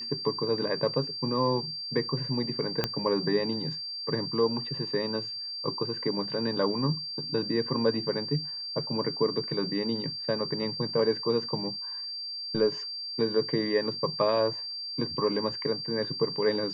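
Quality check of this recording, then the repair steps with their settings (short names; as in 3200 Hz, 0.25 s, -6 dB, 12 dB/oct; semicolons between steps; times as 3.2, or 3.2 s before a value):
tone 4700 Hz -34 dBFS
2.84 pop -11 dBFS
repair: de-click; notch 4700 Hz, Q 30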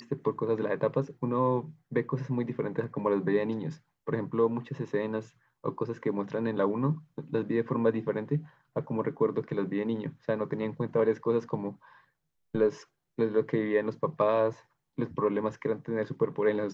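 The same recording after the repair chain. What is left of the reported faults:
2.84 pop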